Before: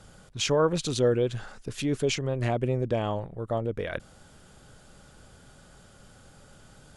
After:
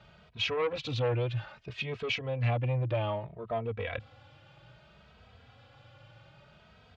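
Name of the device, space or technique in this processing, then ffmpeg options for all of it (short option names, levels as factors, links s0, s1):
barber-pole flanger into a guitar amplifier: -filter_complex "[0:a]asplit=2[s0][s1];[s1]adelay=2.8,afreqshift=0.62[s2];[s0][s2]amix=inputs=2:normalize=1,asoftclip=type=tanh:threshold=0.0631,highpass=79,equalizer=f=110:t=q:w=4:g=5,equalizer=f=180:t=q:w=4:g=-8,equalizer=f=260:t=q:w=4:g=-9,equalizer=f=390:t=q:w=4:g=-10,equalizer=f=1500:t=q:w=4:g=-4,equalizer=f=2500:t=q:w=4:g=6,lowpass=f=3900:w=0.5412,lowpass=f=3900:w=1.3066,volume=1.33"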